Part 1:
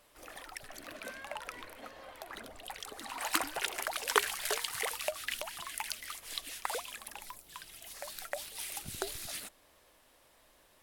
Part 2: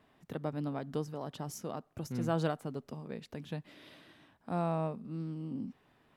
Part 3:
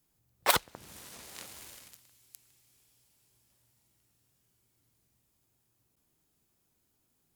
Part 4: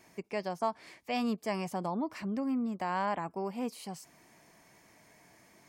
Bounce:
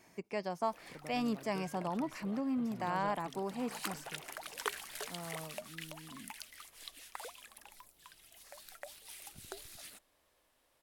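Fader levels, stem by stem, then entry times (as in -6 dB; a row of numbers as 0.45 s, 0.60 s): -9.5 dB, -13.5 dB, mute, -2.5 dB; 0.50 s, 0.60 s, mute, 0.00 s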